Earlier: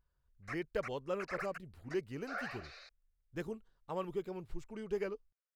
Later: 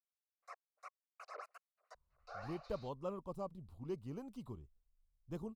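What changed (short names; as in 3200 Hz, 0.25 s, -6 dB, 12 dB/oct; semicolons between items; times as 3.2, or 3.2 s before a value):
speech: entry +1.95 s; master: add EQ curve 210 Hz 0 dB, 420 Hz -7 dB, 650 Hz -3 dB, 1100 Hz 0 dB, 1700 Hz -19 dB, 3700 Hz -7 dB, 5800 Hz -8 dB, 8400 Hz -6 dB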